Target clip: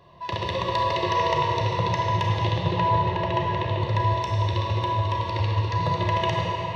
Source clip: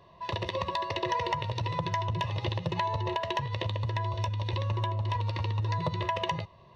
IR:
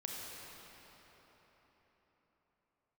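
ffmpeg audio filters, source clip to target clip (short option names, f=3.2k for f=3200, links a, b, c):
-filter_complex "[0:a]asettb=1/sr,asplit=3[a][b][c];[a]atrim=end=2.604[d];[b]atrim=start=2.6:end=3.78,asetpts=PTS-STARTPTS,afade=t=in:d=0.004:c=qsin,afade=t=out:st=1.176:d=0.004:c=qsin,aemphasis=mode=reproduction:type=75fm[e];[c]atrim=start=3.776[f];[d][e]acrossfade=d=0.004:c1=hsin:c2=qsin[g];[g][f]acrossfade=d=0.004:c1=qsin:c2=hsin[h];[1:a]atrim=start_sample=2205[i];[h][i]afir=irnorm=-1:irlink=0,volume=6.5dB"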